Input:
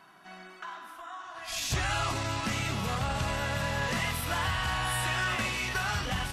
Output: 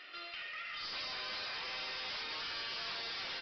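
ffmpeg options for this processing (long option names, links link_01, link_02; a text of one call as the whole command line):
ffmpeg -i in.wav -filter_complex "[0:a]afftfilt=real='re*lt(hypot(re,im),0.0708)':imag='im*lt(hypot(re,im),0.0708)':win_size=1024:overlap=0.75,bandreject=frequency=60:width_type=h:width=6,bandreject=frequency=120:width_type=h:width=6,bandreject=frequency=180:width_type=h:width=6,bandreject=frequency=240:width_type=h:width=6,bandreject=frequency=300:width_type=h:width=6,bandreject=frequency=360:width_type=h:width=6,aeval=exprs='0.075*(cos(1*acos(clip(val(0)/0.075,-1,1)))-cos(1*PI/2))+0.015*(cos(4*acos(clip(val(0)/0.075,-1,1)))-cos(4*PI/2))+0.00119*(cos(8*acos(clip(val(0)/0.075,-1,1)))-cos(8*PI/2))':channel_layout=same,asplit=2[link_01][link_02];[link_02]acompressor=threshold=-45dB:ratio=16,volume=-1dB[link_03];[link_01][link_03]amix=inputs=2:normalize=0,aemphasis=mode=production:type=bsi,asetrate=81585,aresample=44100,aresample=11025,asoftclip=type=tanh:threshold=-36dB,aresample=44100,volume=-1dB" out.wav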